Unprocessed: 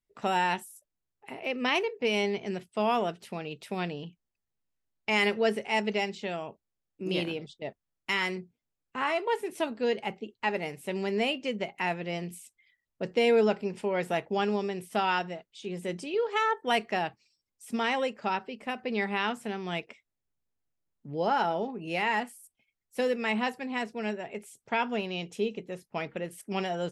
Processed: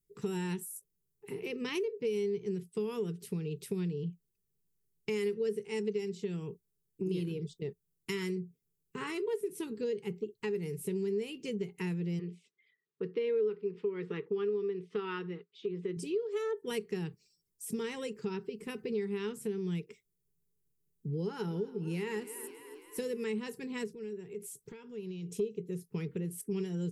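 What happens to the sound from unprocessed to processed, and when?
12.19–15.97 speaker cabinet 290–3700 Hz, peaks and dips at 450 Hz +3 dB, 640 Hz -9 dB, 1200 Hz +10 dB, 1900 Hz +3 dB
21.19–23.24 frequency-shifting echo 0.272 s, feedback 65%, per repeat +31 Hz, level -17 dB
23.88–25.36 compressor 4:1, threshold -46 dBFS
whole clip: EQ curve 100 Hz 0 dB, 170 Hz +10 dB, 260 Hz -8 dB, 430 Hz +9 dB, 620 Hz -30 dB, 960 Hz -14 dB, 3000 Hz -10 dB, 12000 Hz +6 dB; compressor 3:1, threshold -38 dBFS; gain +3.5 dB

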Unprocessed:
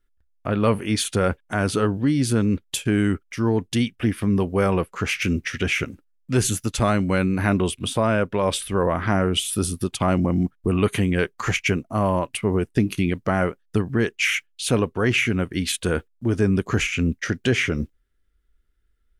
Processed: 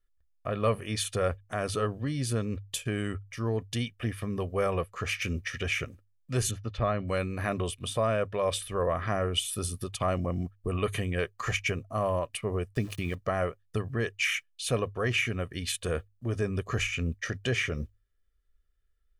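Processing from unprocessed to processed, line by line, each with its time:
6.51–7.08 air absorption 300 m
12.73–13.15 sample gate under -36.5 dBFS
whole clip: bell 190 Hz -6.5 dB 0.28 oct; notches 50/100 Hz; comb 1.7 ms, depth 52%; gain -8 dB

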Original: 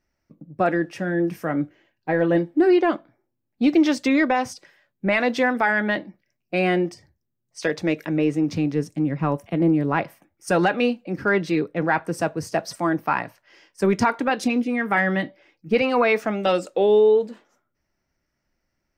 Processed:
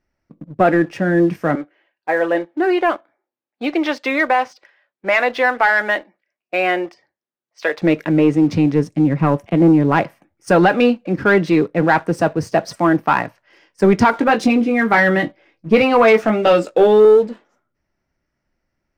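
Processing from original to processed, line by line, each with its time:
1.55–7.82 BPF 580–4200 Hz
14.11–17.05 doubler 18 ms -6.5 dB
whole clip: LPF 3100 Hz 6 dB/oct; sample leveller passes 1; gain +4.5 dB

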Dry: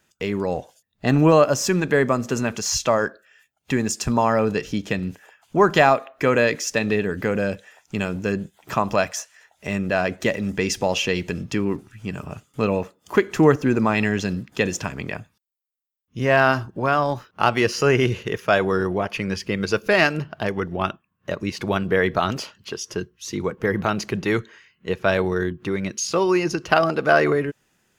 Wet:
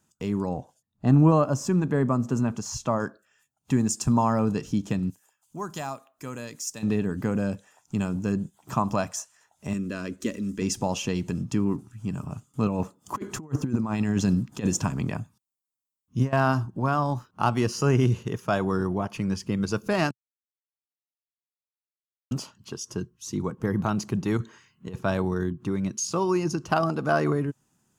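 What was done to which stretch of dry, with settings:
0.49–3 high shelf 3000 Hz -9.5 dB
5.1–6.83 pre-emphasis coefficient 0.8
9.73–10.62 fixed phaser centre 320 Hz, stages 4
12.66–16.33 negative-ratio compressor -23 dBFS, ratio -0.5
20.11–22.31 mute
24.37–25.01 negative-ratio compressor -30 dBFS
whole clip: graphic EQ 125/250/500/1000/2000/4000/8000 Hz +8/+6/-5/+6/-9/-3/+7 dB; gain -6.5 dB

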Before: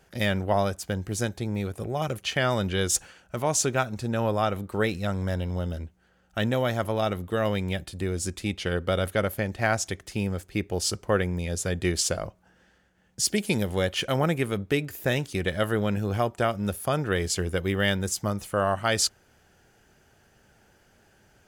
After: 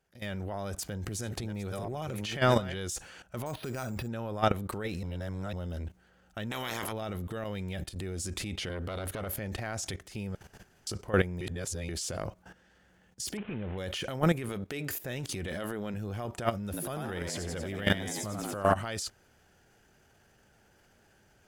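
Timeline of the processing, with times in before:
0.54–2.77 reverse delay 0.671 s, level -11 dB
3.46–4.08 careless resampling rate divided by 6×, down filtered, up hold
5.03–5.53 reverse
6.5–6.91 spectral limiter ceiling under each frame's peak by 23 dB
7.44–8.03 fade in, from -16 dB
8.69–9.27 core saturation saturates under 940 Hz
10.35–10.87 room tone
11.41–11.89 reverse
13.37–13.78 CVSD 16 kbps
14.49–14.98 low shelf 170 Hz -10 dB
15.48–15.94 resonant low shelf 170 Hz -7 dB, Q 1.5
16.64–18.75 frequency-shifting echo 90 ms, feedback 53%, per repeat +75 Hz, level -6.5 dB
whole clip: AGC gain up to 14.5 dB; transient shaper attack -7 dB, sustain +7 dB; level quantiser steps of 14 dB; gain -8 dB

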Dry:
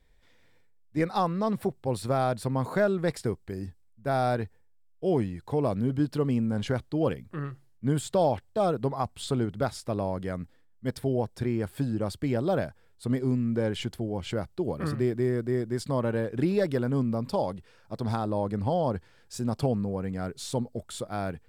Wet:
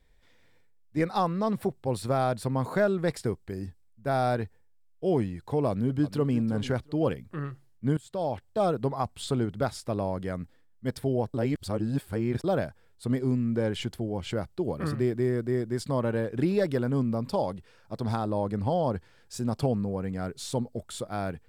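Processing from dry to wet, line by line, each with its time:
5.68–6.37 echo throw 0.35 s, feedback 20%, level -14 dB
7.97–8.6 fade in, from -19.5 dB
11.34–12.44 reverse

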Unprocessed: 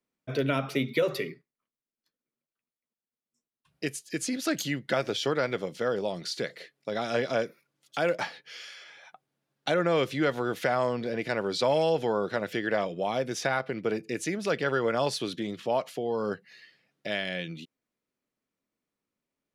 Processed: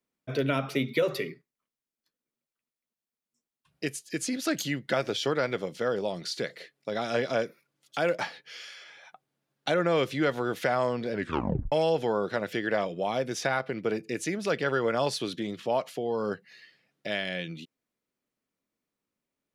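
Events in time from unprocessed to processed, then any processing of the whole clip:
11.12 tape stop 0.60 s

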